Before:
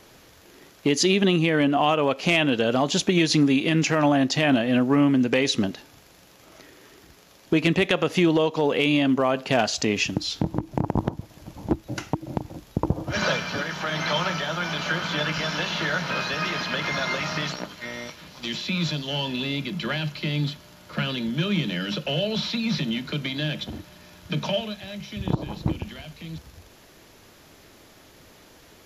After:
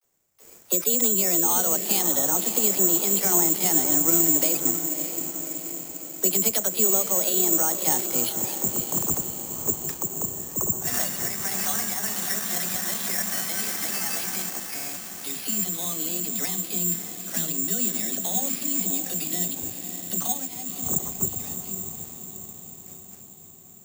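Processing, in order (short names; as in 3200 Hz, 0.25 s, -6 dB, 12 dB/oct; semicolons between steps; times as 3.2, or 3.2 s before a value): gate with hold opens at -39 dBFS; in parallel at -2 dB: compressor, threshold -30 dBFS, peak gain reduction 14 dB; on the sum: vibrato 0.37 Hz 60 cents; varispeed +21%; air absorption 230 m; dispersion lows, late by 45 ms, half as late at 300 Hz; on a send: diffused feedback echo 0.601 s, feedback 59%, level -8.5 dB; on the sum: careless resampling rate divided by 6×, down none, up zero stuff; gain -10 dB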